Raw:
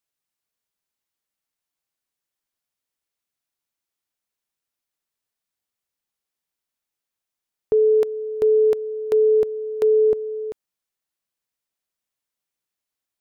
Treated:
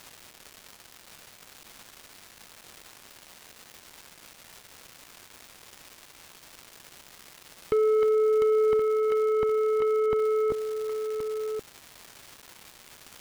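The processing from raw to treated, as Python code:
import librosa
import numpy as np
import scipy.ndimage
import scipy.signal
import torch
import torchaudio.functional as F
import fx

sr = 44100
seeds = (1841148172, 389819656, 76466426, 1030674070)

p1 = fx.low_shelf(x, sr, hz=430.0, db=11.0)
p2 = fx.over_compress(p1, sr, threshold_db=-14.0, ratio=-0.5)
p3 = fx.dmg_crackle(p2, sr, seeds[0], per_s=590.0, level_db=-35.0)
p4 = 10.0 ** (-19.5 / 20.0) * np.tanh(p3 / 10.0 ** (-19.5 / 20.0))
y = p4 + fx.echo_single(p4, sr, ms=1073, db=-9.0, dry=0)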